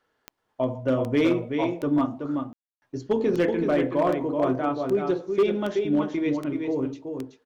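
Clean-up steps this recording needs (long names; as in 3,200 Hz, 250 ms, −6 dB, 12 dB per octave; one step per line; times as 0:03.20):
clipped peaks rebuilt −15 dBFS
click removal
ambience match 0:02.53–0:02.82
echo removal 377 ms −6 dB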